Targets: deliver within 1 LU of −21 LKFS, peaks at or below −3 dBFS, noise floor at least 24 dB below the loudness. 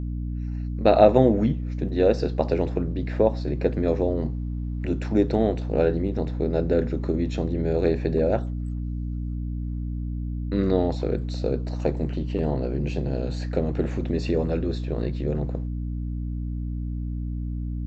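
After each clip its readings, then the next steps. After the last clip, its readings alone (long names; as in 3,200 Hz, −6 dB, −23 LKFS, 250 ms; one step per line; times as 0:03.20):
mains hum 60 Hz; hum harmonics up to 300 Hz; level of the hum −26 dBFS; integrated loudness −25.5 LKFS; sample peak −2.0 dBFS; target loudness −21.0 LKFS
→ mains-hum notches 60/120/180/240/300 Hz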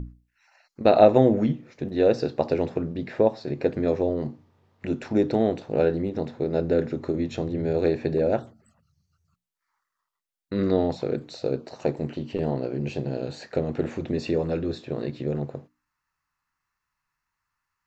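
mains hum none found; integrated loudness −25.5 LKFS; sample peak −3.0 dBFS; target loudness −21.0 LKFS
→ level +4.5 dB
brickwall limiter −3 dBFS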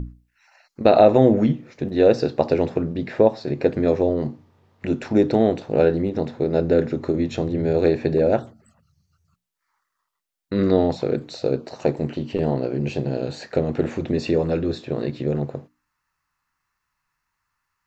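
integrated loudness −21.5 LKFS; sample peak −3.0 dBFS; background noise floor −78 dBFS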